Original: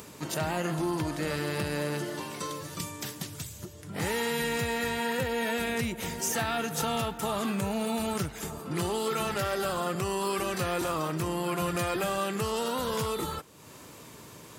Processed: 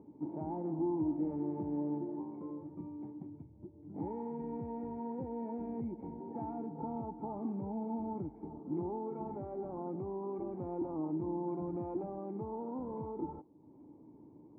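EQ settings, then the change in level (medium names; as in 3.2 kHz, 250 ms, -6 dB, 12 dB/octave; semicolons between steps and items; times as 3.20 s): dynamic bell 960 Hz, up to +5 dB, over -45 dBFS, Q 0.82; cascade formant filter u; treble shelf 2.6 kHz -11 dB; +2.0 dB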